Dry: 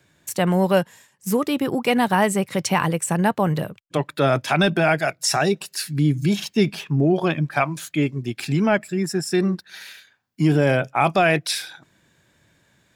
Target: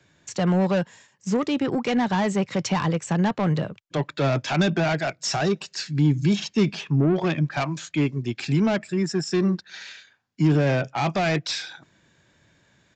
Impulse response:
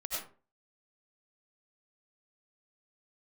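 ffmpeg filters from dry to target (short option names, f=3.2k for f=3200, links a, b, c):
-filter_complex "[0:a]acrossover=split=260[a][b];[b]asoftclip=type=tanh:threshold=-21dB[c];[a][c]amix=inputs=2:normalize=0,aresample=16000,aresample=44100"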